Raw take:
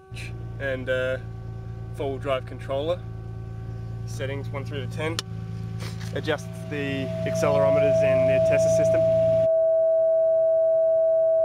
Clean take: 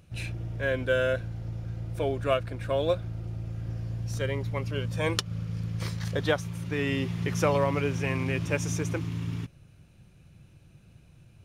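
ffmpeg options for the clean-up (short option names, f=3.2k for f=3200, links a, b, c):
-af "bandreject=f=380.7:t=h:w=4,bandreject=f=761.4:t=h:w=4,bandreject=f=1.1421k:t=h:w=4,bandreject=f=1.5228k:t=h:w=4,bandreject=f=650:w=30"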